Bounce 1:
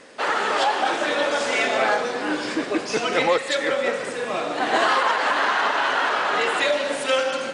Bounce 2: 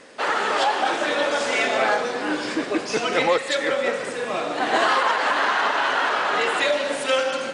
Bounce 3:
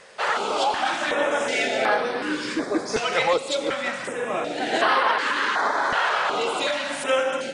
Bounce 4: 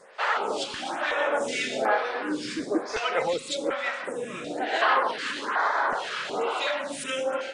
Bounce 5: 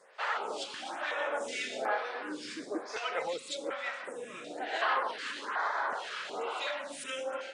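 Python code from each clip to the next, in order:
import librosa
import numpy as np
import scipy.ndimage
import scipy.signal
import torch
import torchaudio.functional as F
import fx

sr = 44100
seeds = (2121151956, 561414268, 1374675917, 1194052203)

y1 = x
y2 = fx.filter_held_notch(y1, sr, hz=2.7, low_hz=280.0, high_hz=7100.0)
y3 = fx.stagger_phaser(y2, sr, hz=1.1)
y3 = y3 * 10.0 ** (-1.0 / 20.0)
y4 = fx.highpass(y3, sr, hz=380.0, slope=6)
y4 = y4 * 10.0 ** (-7.0 / 20.0)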